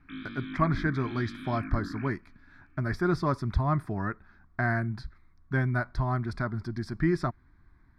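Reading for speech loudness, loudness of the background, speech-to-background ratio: -30.5 LUFS, -40.5 LUFS, 10.0 dB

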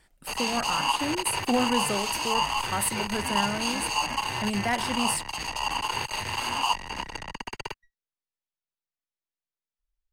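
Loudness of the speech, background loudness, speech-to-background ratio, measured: -30.5 LUFS, -28.5 LUFS, -2.0 dB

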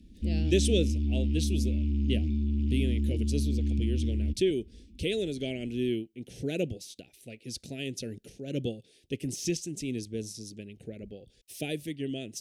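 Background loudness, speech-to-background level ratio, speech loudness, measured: -29.5 LUFS, -4.5 dB, -34.0 LUFS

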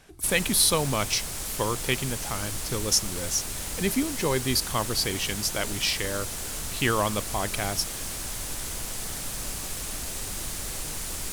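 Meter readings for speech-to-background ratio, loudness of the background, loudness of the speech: 5.0 dB, -32.0 LUFS, -27.0 LUFS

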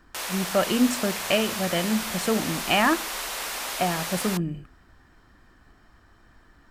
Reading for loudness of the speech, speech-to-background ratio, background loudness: -26.0 LUFS, 4.0 dB, -30.0 LUFS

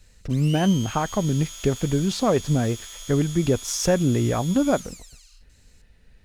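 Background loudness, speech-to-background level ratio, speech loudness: -36.5 LUFS, 13.5 dB, -23.0 LUFS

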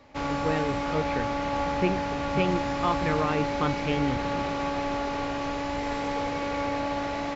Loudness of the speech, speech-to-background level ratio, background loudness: -30.5 LUFS, -1.0 dB, -29.5 LUFS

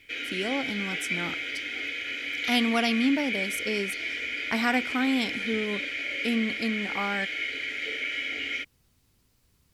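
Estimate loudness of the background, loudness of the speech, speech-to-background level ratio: -30.5 LUFS, -29.5 LUFS, 1.0 dB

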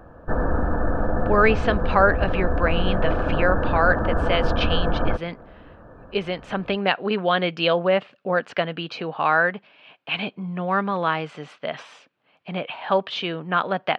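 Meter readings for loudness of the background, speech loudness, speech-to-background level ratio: -25.0 LUFS, -24.0 LUFS, 1.0 dB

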